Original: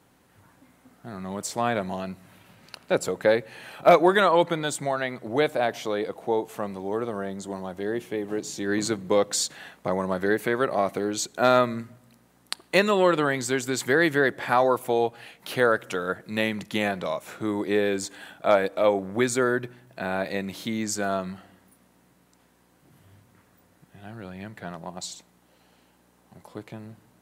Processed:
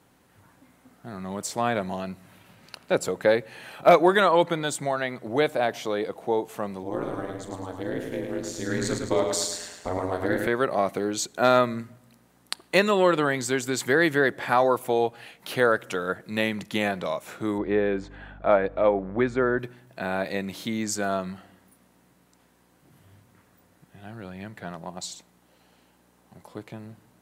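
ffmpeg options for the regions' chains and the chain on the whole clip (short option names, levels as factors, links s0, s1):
-filter_complex "[0:a]asettb=1/sr,asplit=3[s0][s1][s2];[s0]atrim=end=6.834[s3];[s1]atrim=start=6.83:end=10.47,asetpts=PTS-STARTPTS,afade=t=in:d=0.004:c=qsin,afade=t=out:st=3.636:d=0.004:c=qsin,aeval=exprs='val(0)*sin(2*PI*89*n/s)':c=same,asplit=2[s4][s5];[s5]adelay=42,volume=0.282[s6];[s4][s6]amix=inputs=2:normalize=0,atrim=end_sample=160524,aecho=1:1:107|214|321|428|535|642:0.562|0.264|0.124|0.0584|0.0274|0.0129,atrim=end_sample=160524[s7];[s2]atrim=start=10.466[s8];[s3][s7]acrossfade=d=0.004:c1=hsin:c2=qsin[s9];[s9][s8]acrossfade=d=0.004:c1=qsin:c2=hsin,asettb=1/sr,asplit=3[s10][s11][s12];[s10]atrim=end=17.584[s13];[s11]atrim=start=17.58:end=19.59,asetpts=PTS-STARTPTS,afade=t=in:d=0.004:c=qsin,afade=t=out:st=2.006:d=0.004:c=qsin,lowpass=2000,aeval=exprs='val(0)+0.00562*(sin(2*PI*50*n/s)+sin(2*PI*2*50*n/s)/2+sin(2*PI*3*50*n/s)/3+sin(2*PI*4*50*n/s)/4+sin(2*PI*5*50*n/s)/5)':c=same[s14];[s12]atrim=start=19.586[s15];[s13][s14]acrossfade=d=0.004:c1=hsin:c2=qsin[s16];[s16][s15]acrossfade=d=0.004:c1=qsin:c2=hsin"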